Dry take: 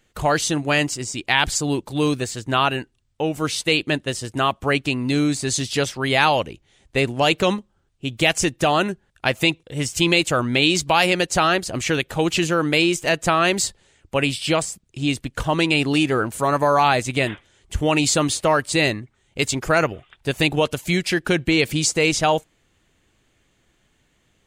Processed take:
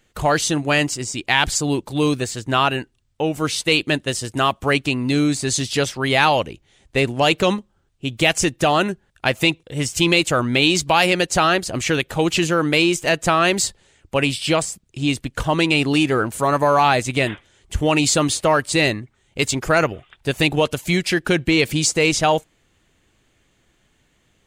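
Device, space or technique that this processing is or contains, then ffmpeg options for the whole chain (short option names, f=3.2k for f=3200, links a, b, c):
parallel distortion: -filter_complex "[0:a]asettb=1/sr,asplit=3[a][b][c];[a]atrim=end=3.714[d];[b]atrim=start=3.71:end=4.86,asetpts=PTS-STARTPTS,afade=t=in:d=0.004:c=qsin,afade=t=out:st=1.146:d=0.004:c=qsin,highshelf=f=3.9k:g=3.5[e];[c]atrim=start=4.856[f];[d][e]acrossfade=d=0.004:c1=hsin:c2=qsin[g];[g][f]acrossfade=d=0.004:c1=qsin:c2=hsin,asplit=2[h][i];[i]asoftclip=type=hard:threshold=-14dB,volume=-13.5dB[j];[h][j]amix=inputs=2:normalize=0"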